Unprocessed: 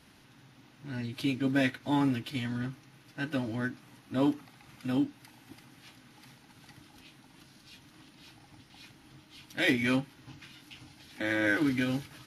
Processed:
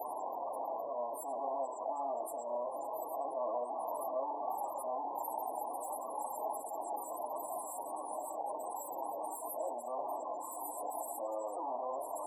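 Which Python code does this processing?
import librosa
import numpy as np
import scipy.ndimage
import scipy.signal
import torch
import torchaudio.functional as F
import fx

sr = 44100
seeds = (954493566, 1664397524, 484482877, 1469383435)

y = np.sign(x) * np.sqrt(np.mean(np.square(x)))
y = scipy.signal.sosfilt(scipy.signal.cheby1(4, 1.0, [1100.0, 7400.0], 'bandstop', fs=sr, output='sos'), y)
y = fx.peak_eq(y, sr, hz=1600.0, db=-7.0, octaves=0.5)
y = fx.doubler(y, sr, ms=33.0, db=-8.5)
y = fx.spec_topn(y, sr, count=32)
y = fx.ladder_highpass(y, sr, hz=590.0, resonance_pct=60)
y = fx.high_shelf(y, sr, hz=6200.0, db=10.0)
y = fx.echo_wet_bandpass(y, sr, ms=68, feedback_pct=81, hz=1500.0, wet_db=-13)
y = fx.attack_slew(y, sr, db_per_s=110.0)
y = y * 10.0 ** (10.5 / 20.0)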